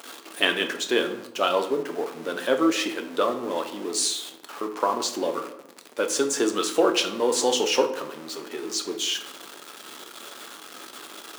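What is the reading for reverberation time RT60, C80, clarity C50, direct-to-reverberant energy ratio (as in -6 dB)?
0.85 s, 13.5 dB, 10.5 dB, 5.0 dB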